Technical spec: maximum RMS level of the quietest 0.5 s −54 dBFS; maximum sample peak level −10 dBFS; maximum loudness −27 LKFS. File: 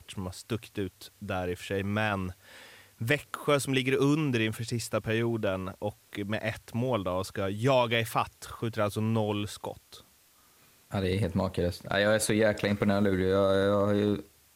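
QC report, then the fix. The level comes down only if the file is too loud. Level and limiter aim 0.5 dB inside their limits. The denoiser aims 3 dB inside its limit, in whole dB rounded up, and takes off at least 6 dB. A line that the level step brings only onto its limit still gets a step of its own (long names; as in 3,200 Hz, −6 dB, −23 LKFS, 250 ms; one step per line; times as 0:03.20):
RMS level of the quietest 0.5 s −62 dBFS: in spec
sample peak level −12.0 dBFS: in spec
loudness −29.5 LKFS: in spec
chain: no processing needed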